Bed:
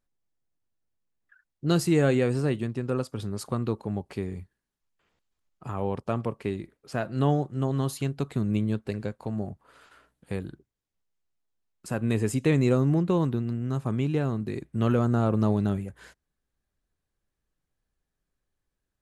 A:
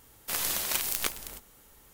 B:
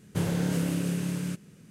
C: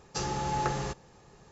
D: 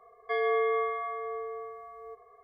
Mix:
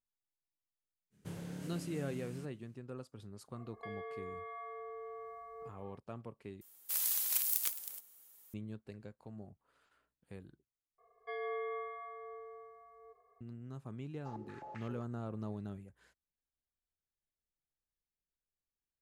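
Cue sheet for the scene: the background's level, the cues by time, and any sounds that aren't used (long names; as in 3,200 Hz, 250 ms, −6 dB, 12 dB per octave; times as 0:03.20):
bed −18 dB
0:01.10: mix in B −17 dB, fades 0.05 s
0:03.54: mix in D −3.5 dB + downward compressor 8 to 1, threshold −39 dBFS
0:06.61: overwrite with A −17 dB + RIAA equalisation recording
0:10.98: overwrite with D −12.5 dB
0:14.10: mix in C −9 dB + band-pass on a step sequencer 7.7 Hz 240–2,200 Hz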